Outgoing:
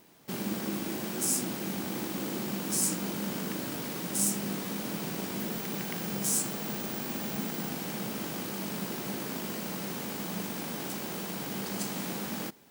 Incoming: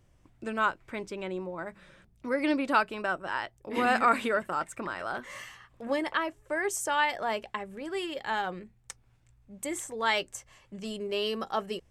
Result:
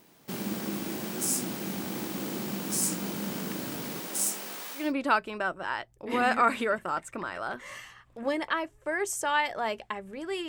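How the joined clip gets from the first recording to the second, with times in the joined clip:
outgoing
3.99–4.93 HPF 290 Hz -> 1100 Hz
4.83 switch to incoming from 2.47 s, crossfade 0.20 s

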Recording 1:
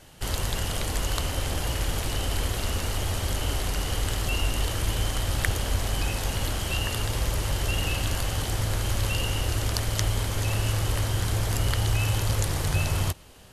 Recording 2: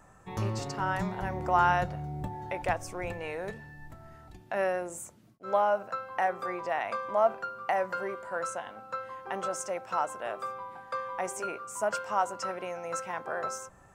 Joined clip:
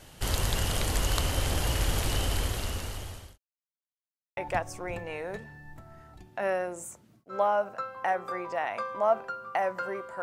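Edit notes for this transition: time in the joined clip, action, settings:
recording 1
2.15–3.38 fade out linear
3.38–4.37 mute
4.37 switch to recording 2 from 2.51 s

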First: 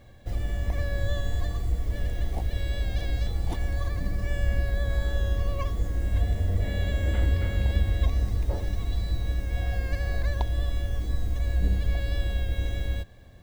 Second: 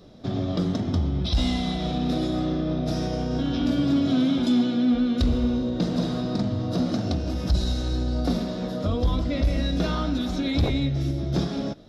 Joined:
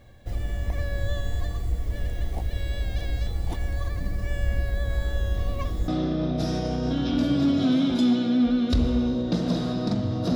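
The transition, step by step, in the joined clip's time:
first
5.34 add second from 1.82 s 0.54 s -17 dB
5.88 switch to second from 2.36 s

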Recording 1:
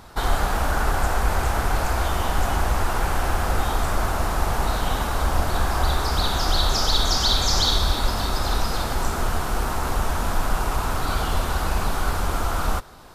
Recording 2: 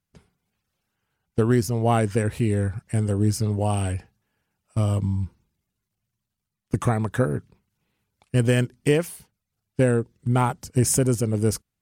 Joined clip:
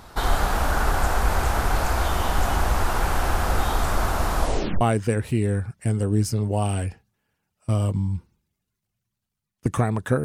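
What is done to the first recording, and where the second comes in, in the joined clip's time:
recording 1
4.37 tape stop 0.44 s
4.81 switch to recording 2 from 1.89 s

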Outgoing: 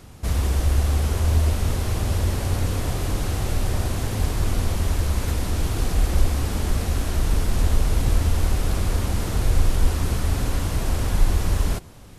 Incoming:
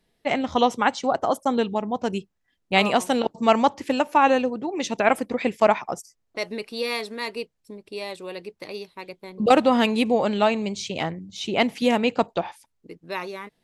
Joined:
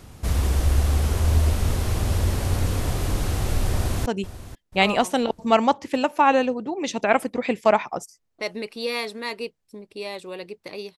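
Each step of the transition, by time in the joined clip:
outgoing
3.74–4.06 echo throw 0.49 s, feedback 35%, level -14.5 dB
4.06 switch to incoming from 2.02 s

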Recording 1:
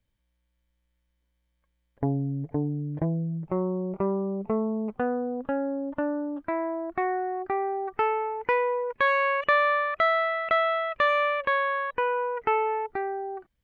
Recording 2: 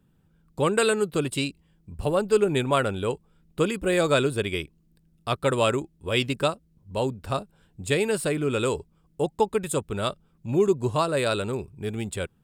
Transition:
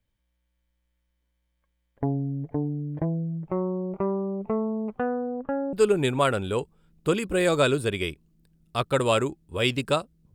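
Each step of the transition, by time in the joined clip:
recording 1
5.26–5.73 LPF 3600 Hz -> 1000 Hz
5.73 switch to recording 2 from 2.25 s

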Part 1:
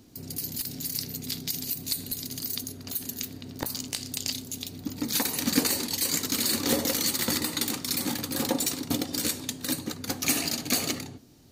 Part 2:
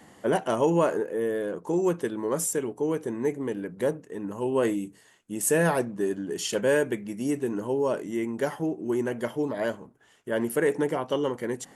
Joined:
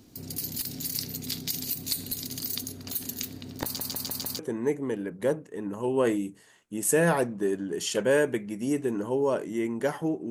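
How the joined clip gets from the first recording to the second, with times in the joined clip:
part 1
3.64 stutter in place 0.15 s, 5 plays
4.39 switch to part 2 from 2.97 s

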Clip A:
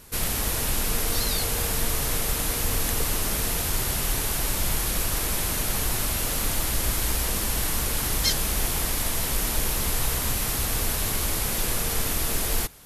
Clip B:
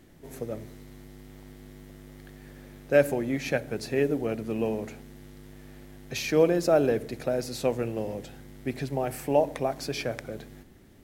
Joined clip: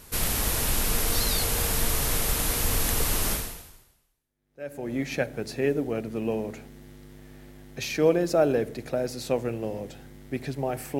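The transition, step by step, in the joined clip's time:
clip A
4.12 switch to clip B from 2.46 s, crossfade 1.60 s exponential

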